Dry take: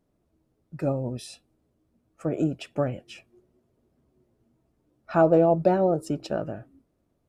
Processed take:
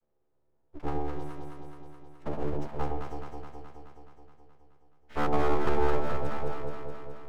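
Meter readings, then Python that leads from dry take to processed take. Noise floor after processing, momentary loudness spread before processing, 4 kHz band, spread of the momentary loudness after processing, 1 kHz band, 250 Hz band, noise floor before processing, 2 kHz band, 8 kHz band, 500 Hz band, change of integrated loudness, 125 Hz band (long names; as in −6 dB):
−71 dBFS, 18 LU, −4.5 dB, 20 LU, −2.5 dB, −9.0 dB, −73 dBFS, −0.5 dB, can't be measured, −8.5 dB, −8.5 dB, −6.5 dB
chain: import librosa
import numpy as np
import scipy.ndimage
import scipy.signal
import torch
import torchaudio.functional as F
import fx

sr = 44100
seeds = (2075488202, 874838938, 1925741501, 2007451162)

y = fx.chord_vocoder(x, sr, chord='bare fifth', root=50)
y = np.abs(y)
y = fx.echo_alternate(y, sr, ms=106, hz=890.0, feedback_pct=82, wet_db=-2)
y = y * librosa.db_to_amplitude(-4.5)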